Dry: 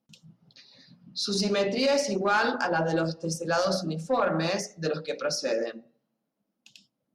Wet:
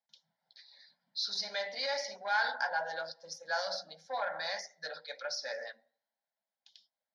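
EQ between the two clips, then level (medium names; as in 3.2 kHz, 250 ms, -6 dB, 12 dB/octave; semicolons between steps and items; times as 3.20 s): high-pass 970 Hz 12 dB/octave; distance through air 95 m; static phaser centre 1.8 kHz, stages 8; 0.0 dB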